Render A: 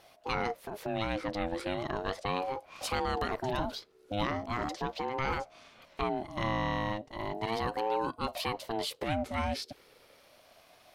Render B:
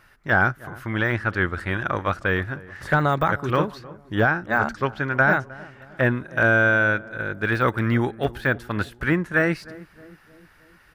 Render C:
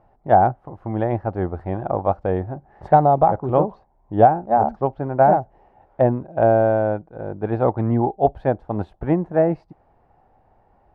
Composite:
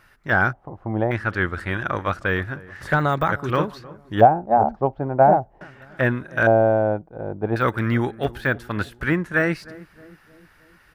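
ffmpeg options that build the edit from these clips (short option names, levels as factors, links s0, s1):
-filter_complex "[2:a]asplit=3[s0][s1][s2];[1:a]asplit=4[s3][s4][s5][s6];[s3]atrim=end=0.532[s7];[s0]atrim=start=0.528:end=1.112[s8];[s4]atrim=start=1.108:end=4.212[s9];[s1]atrim=start=4.208:end=5.612[s10];[s5]atrim=start=5.608:end=6.472[s11];[s2]atrim=start=6.468:end=7.562[s12];[s6]atrim=start=7.558[s13];[s7][s8]acrossfade=d=0.004:c1=hsin:c2=hsin[s14];[s14][s9]acrossfade=d=0.004:c1=hsin:c2=hsin[s15];[s15][s10]acrossfade=d=0.004:c1=hsin:c2=hsin[s16];[s16][s11]acrossfade=d=0.004:c1=hsin:c2=hsin[s17];[s17][s12]acrossfade=d=0.004:c1=hsin:c2=hsin[s18];[s18][s13]acrossfade=d=0.004:c1=hsin:c2=hsin"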